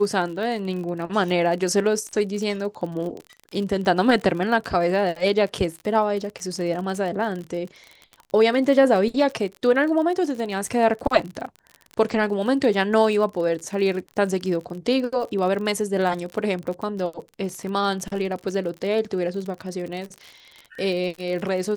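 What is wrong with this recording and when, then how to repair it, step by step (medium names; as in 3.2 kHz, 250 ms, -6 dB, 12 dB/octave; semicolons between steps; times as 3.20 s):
crackle 44 per s -30 dBFS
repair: de-click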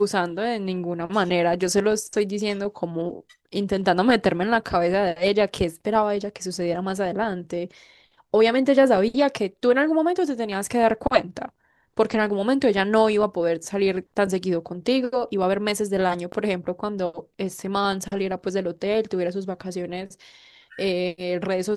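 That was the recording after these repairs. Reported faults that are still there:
nothing left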